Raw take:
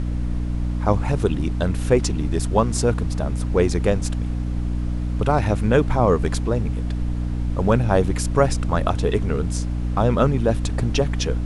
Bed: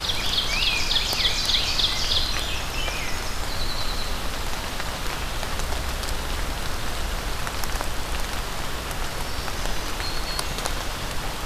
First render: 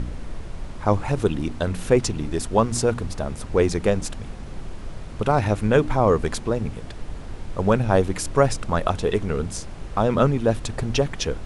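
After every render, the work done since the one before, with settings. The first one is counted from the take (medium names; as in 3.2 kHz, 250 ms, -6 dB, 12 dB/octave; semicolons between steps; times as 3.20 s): de-hum 60 Hz, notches 5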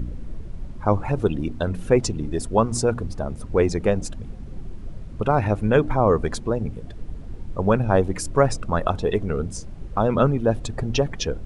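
noise reduction 12 dB, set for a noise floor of -35 dBFS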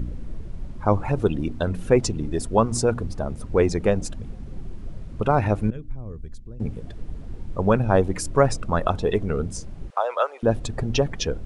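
5.70–6.60 s: amplifier tone stack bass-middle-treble 10-0-1; 9.90–10.43 s: steep high-pass 550 Hz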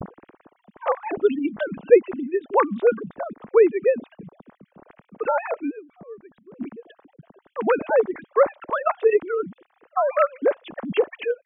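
formants replaced by sine waves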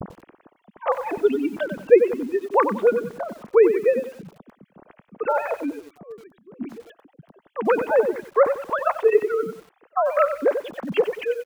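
delay 91 ms -18.5 dB; bit-crushed delay 93 ms, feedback 35%, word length 7-bit, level -10 dB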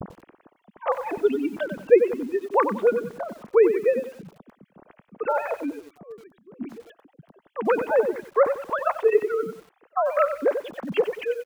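trim -2 dB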